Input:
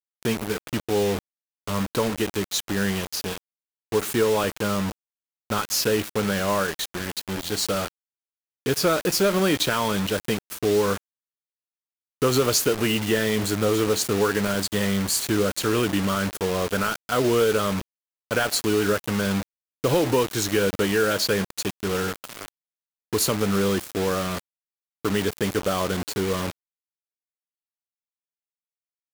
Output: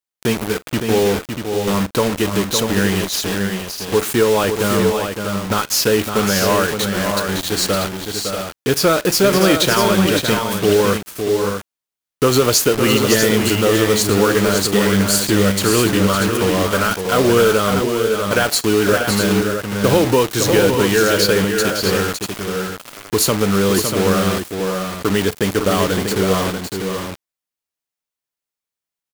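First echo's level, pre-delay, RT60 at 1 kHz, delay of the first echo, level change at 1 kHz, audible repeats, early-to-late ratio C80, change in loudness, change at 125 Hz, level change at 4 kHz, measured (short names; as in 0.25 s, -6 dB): -19.5 dB, none, none, 42 ms, +8.0 dB, 3, none, +7.5 dB, +8.0 dB, +8.0 dB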